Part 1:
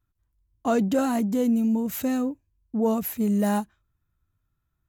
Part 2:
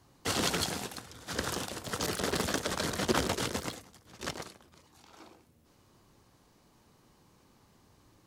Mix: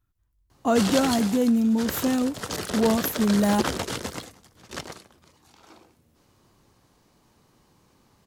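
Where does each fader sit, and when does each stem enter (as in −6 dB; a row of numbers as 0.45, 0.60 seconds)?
+1.5, +2.0 decibels; 0.00, 0.50 seconds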